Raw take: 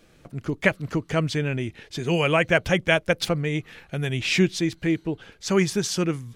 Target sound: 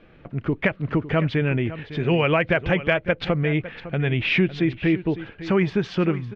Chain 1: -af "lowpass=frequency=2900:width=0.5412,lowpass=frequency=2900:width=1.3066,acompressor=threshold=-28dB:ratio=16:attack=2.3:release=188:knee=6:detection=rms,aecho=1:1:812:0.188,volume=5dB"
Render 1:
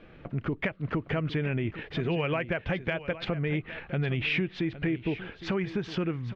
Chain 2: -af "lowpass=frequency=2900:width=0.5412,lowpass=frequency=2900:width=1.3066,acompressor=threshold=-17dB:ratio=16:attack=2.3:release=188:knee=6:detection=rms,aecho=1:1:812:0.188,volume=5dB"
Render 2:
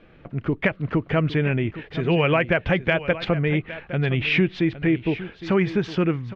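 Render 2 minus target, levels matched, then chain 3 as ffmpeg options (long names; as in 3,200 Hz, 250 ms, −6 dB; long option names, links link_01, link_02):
echo 256 ms late
-af "lowpass=frequency=2900:width=0.5412,lowpass=frequency=2900:width=1.3066,acompressor=threshold=-17dB:ratio=16:attack=2.3:release=188:knee=6:detection=rms,aecho=1:1:556:0.188,volume=5dB"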